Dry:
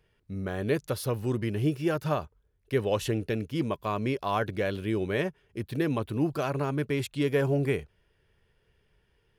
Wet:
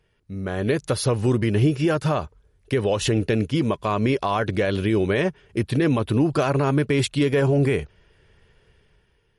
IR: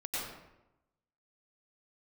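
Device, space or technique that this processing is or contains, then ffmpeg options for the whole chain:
low-bitrate web radio: -af "dynaudnorm=f=200:g=7:m=9dB,alimiter=limit=-14.5dB:level=0:latency=1:release=116,volume=3dB" -ar 48000 -c:a libmp3lame -b:a 48k

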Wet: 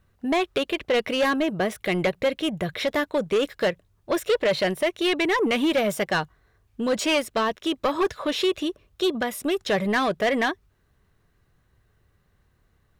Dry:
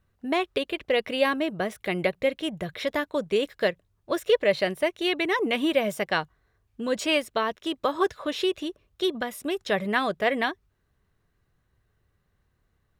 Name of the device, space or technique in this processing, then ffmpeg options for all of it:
saturation between pre-emphasis and de-emphasis: -af "highshelf=f=7.7k:g=10,asoftclip=type=tanh:threshold=-22.5dB,highshelf=f=7.7k:g=-10,volume=6dB"

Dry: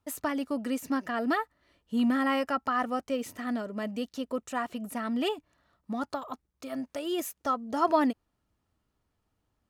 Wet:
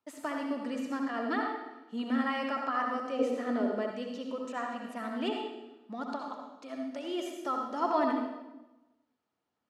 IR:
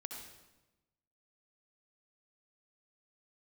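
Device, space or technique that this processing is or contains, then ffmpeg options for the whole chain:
supermarket ceiling speaker: -filter_complex "[0:a]highpass=250,lowpass=5.8k[a];[1:a]atrim=start_sample=2205[b];[a][b]afir=irnorm=-1:irlink=0,asettb=1/sr,asplit=3[c][d][e];[c]atrim=end=3.194[f];[d]atrim=start=3.19:end=3.91,asetpts=PTS-STARTPTS,afade=t=in:d=0.004:c=qsin,afade=t=out:st=0.716:d=0.004:c=qsin,equalizer=f=430:t=o:w=1.6:g=11[g];[e]atrim=start=3.906[h];[f][g]acrossfade=d=0.004:c1=hsin:c2=qsin[i];[i][h]acrossfade=d=0.004:c1=qsin:c2=hsin"

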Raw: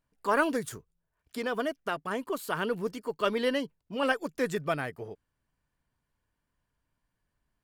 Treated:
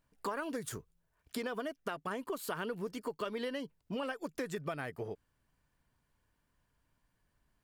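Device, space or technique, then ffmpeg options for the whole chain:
serial compression, leveller first: -af "acompressor=threshold=-28dB:ratio=2.5,acompressor=threshold=-39dB:ratio=5,volume=3.5dB"

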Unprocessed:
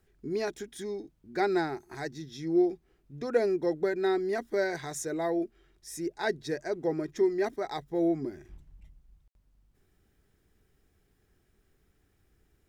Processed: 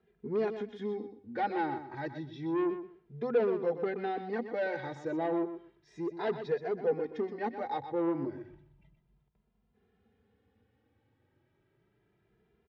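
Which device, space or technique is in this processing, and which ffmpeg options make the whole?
barber-pole flanger into a guitar amplifier: -filter_complex "[0:a]asplit=2[a][b];[b]adelay=2.5,afreqshift=0.32[c];[a][c]amix=inputs=2:normalize=1,asoftclip=type=tanh:threshold=-29.5dB,highpass=93,equalizer=f=110:t=q:w=4:g=7,equalizer=f=220:t=q:w=4:g=7,equalizer=f=480:t=q:w=4:g=8,equalizer=f=860:t=q:w=4:g=7,lowpass=f=3.6k:w=0.5412,lowpass=f=3.6k:w=1.3066,aecho=1:1:124|248|372:0.316|0.0569|0.0102"

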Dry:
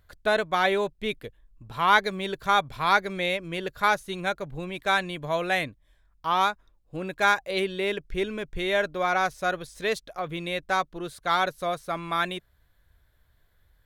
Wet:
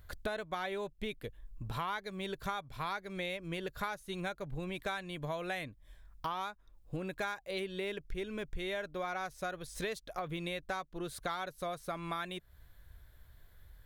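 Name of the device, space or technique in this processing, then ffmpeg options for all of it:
ASMR close-microphone chain: -af "lowshelf=f=130:g=5.5,acompressor=threshold=-38dB:ratio=8,highshelf=f=10k:g=5.5,volume=2.5dB"

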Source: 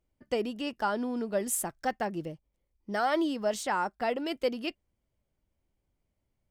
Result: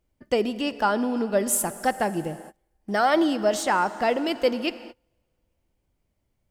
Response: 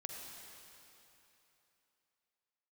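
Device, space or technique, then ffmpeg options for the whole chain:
keyed gated reverb: -filter_complex "[0:a]asplit=3[a][b][c];[1:a]atrim=start_sample=2205[d];[b][d]afir=irnorm=-1:irlink=0[e];[c]apad=whole_len=286925[f];[e][f]sidechaingate=range=-31dB:threshold=-59dB:ratio=16:detection=peak,volume=-6.5dB[g];[a][g]amix=inputs=2:normalize=0,volume=5dB"

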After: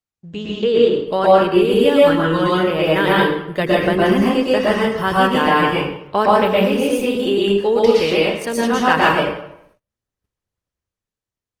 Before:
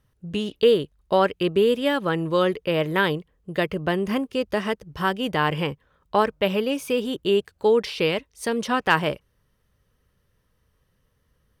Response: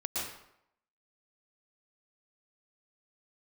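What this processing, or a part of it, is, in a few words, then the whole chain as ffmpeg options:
speakerphone in a meeting room: -filter_complex "[0:a]bandreject=f=50:t=h:w=6,bandreject=f=100:t=h:w=6,bandreject=f=150:t=h:w=6,asettb=1/sr,asplit=3[a][b][c];[a]atrim=end=1.714[d];[b]atrim=start=1.71:end=2.49,asetpts=PTS-STARTPTS,afade=t=in:d=0.004:c=qsin,afade=t=out:st=0.776:d=0.004:c=qsin,aecho=1:1:6.8:0.66,atrim=end_sample=34398[e];[c]atrim=start=2.486[f];[d][e]acrossfade=d=0.004:c1=hsin:c2=qsin[g];[g][f]acrossfade=d=0.004:c1=qsin:c2=hsin[h];[1:a]atrim=start_sample=2205[i];[h][i]afir=irnorm=-1:irlink=0,dynaudnorm=f=110:g=17:m=7.5dB,agate=range=-27dB:threshold=-52dB:ratio=16:detection=peak" -ar 48000 -c:a libopus -b:a 20k

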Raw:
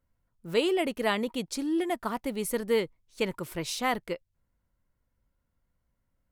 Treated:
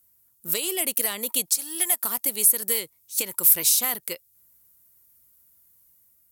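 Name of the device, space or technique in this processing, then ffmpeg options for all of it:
FM broadcast chain: -filter_complex "[0:a]asettb=1/sr,asplit=3[a][b][c];[a]atrim=end=1.574[d];[b]atrim=start=1.57:end=2.03,asetpts=PTS-STARTPTS,afade=t=in:d=0.004:c=qsin,afade=t=out:st=0.456:d=0.004:c=qsin,highpass=680[e];[c]atrim=start=2.026[f];[d][e]acrossfade=d=0.004:c1=hsin:c2=qsin[g];[g][f]acrossfade=d=0.004:c1=qsin:c2=hsin,highpass=70,dynaudnorm=f=490:g=3:m=3dB,acrossover=split=320|1400[h][i][j];[h]acompressor=threshold=-41dB:ratio=4[k];[i]acompressor=threshold=-28dB:ratio=4[l];[j]acompressor=threshold=-33dB:ratio=4[m];[k][l][m]amix=inputs=3:normalize=0,aemphasis=mode=production:type=75fm,alimiter=limit=-19dB:level=0:latency=1:release=331,asoftclip=type=hard:threshold=-23dB,lowpass=f=15k:w=0.5412,lowpass=f=15k:w=1.3066,aemphasis=mode=production:type=75fm"

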